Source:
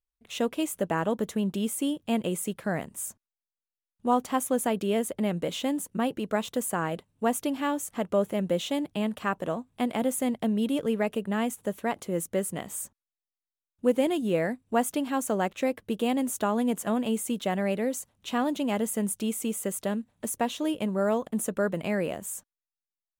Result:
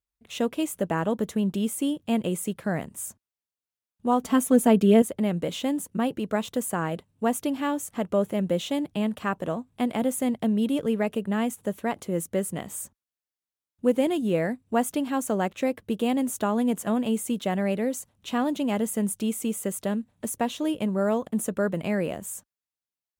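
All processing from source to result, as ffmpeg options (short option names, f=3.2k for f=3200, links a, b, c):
-filter_complex "[0:a]asettb=1/sr,asplit=3[a][b][c];[a]atrim=end=4.234[d];[b]atrim=start=4.23:end=5.02,asetpts=PTS-STARTPTS,afade=t=in:d=0.004:c=qsin,afade=t=out:st=0.786:d=0.004:c=qsin,lowshelf=f=450:g=5,aecho=1:1:4.5:0.74,atrim=end_sample=34839[e];[c]atrim=start=5.016[f];[d][e]acrossfade=d=0.004:c1=hsin:c2=qsin[g];[g][f]acrossfade=d=0.004:c1=qsin:c2=hsin,highpass=42,lowshelf=f=240:g=5"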